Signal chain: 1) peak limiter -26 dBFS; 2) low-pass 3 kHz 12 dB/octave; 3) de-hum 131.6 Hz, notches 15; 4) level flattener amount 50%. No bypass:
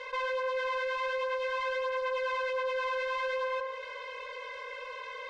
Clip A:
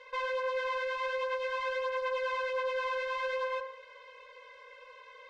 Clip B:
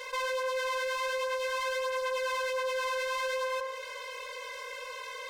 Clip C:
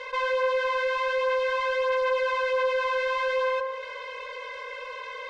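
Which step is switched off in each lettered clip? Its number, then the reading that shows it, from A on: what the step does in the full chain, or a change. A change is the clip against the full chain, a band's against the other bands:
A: 4, momentary loudness spread change +10 LU; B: 2, 4 kHz band +4.5 dB; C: 1, mean gain reduction 3.0 dB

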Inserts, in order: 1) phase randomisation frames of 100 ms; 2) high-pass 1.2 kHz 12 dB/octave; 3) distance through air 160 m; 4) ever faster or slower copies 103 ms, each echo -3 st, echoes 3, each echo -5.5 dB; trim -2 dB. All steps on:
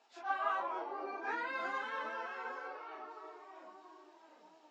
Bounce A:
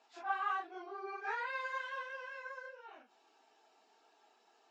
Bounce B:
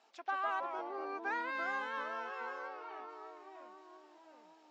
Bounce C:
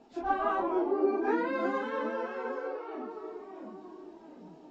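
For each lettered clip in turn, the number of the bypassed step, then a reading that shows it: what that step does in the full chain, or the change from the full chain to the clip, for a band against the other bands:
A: 4, 250 Hz band -4.5 dB; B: 1, 250 Hz band +1.5 dB; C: 2, 250 Hz band +17.0 dB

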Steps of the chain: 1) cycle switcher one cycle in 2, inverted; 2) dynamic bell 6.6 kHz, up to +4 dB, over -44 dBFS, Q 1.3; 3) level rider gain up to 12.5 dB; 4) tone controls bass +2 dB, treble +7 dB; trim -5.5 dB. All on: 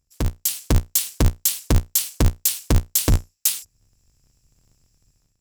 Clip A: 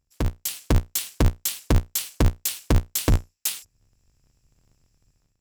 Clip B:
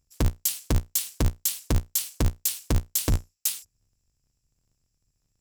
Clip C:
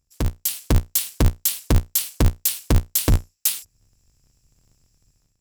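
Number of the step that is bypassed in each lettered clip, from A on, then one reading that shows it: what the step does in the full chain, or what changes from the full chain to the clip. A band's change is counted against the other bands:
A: 4, 8 kHz band -6.0 dB; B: 3, loudness change -5.5 LU; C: 2, 8 kHz band -2.5 dB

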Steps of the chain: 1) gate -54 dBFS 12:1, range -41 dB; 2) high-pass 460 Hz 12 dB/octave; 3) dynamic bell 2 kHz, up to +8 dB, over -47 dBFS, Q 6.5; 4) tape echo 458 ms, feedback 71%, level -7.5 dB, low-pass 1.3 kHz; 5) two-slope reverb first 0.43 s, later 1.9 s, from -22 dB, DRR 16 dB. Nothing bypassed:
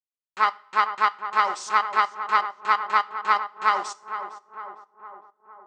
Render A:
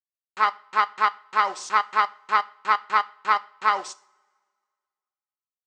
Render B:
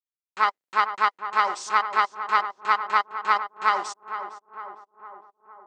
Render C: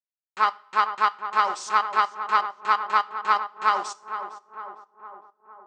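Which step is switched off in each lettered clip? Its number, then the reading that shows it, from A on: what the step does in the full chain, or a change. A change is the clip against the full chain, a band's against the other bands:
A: 4, echo-to-direct -11.0 dB to -16.0 dB; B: 5, echo-to-direct -11.0 dB to -12.5 dB; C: 3, 2 kHz band -1.5 dB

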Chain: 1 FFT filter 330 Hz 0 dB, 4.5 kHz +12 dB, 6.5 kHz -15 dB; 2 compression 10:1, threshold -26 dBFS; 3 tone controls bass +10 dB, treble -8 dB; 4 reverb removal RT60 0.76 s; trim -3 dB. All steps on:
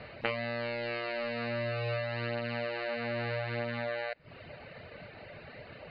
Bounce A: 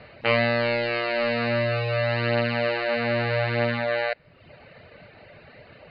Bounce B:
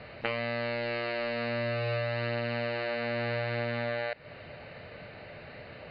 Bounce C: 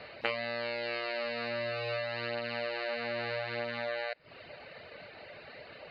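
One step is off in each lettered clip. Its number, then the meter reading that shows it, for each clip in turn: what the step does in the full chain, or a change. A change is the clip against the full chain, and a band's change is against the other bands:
2, mean gain reduction 7.0 dB; 4, crest factor change -2.5 dB; 3, crest factor change +2.5 dB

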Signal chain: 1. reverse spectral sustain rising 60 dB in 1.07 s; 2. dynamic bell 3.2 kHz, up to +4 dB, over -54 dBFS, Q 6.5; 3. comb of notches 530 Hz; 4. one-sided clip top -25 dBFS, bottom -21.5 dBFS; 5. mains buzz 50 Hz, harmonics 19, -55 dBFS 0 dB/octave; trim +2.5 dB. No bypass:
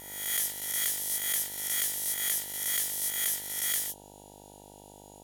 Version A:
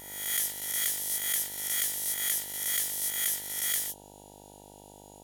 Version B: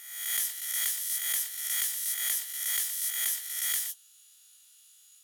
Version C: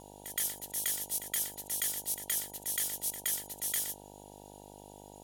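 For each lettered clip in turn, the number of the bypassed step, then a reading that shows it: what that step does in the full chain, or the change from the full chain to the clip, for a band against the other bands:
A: 4, distortion -24 dB; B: 5, 1 kHz band -5.0 dB; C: 1, 2 kHz band -5.5 dB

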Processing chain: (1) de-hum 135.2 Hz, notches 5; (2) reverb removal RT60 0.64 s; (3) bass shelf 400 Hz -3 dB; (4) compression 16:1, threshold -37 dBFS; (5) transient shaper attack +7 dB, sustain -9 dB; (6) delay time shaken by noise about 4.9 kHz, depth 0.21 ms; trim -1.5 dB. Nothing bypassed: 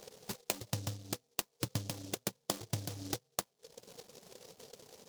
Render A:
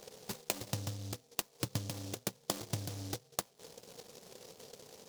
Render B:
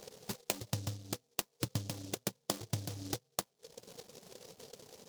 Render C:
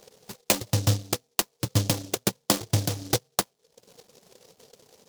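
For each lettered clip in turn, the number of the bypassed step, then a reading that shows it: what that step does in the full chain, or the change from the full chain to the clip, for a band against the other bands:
2, momentary loudness spread change -2 LU; 3, momentary loudness spread change -1 LU; 4, mean gain reduction 7.0 dB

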